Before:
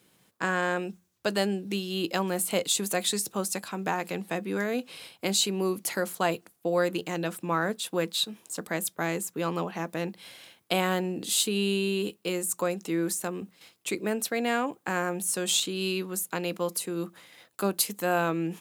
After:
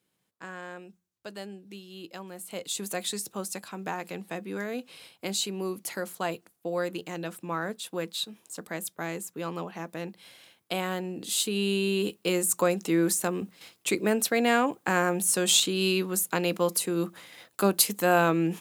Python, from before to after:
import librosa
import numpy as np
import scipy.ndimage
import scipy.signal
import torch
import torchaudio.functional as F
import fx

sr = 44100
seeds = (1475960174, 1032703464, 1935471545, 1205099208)

y = fx.gain(x, sr, db=fx.line((2.39, -13.5), (2.83, -4.5), (10.99, -4.5), (12.37, 4.0)))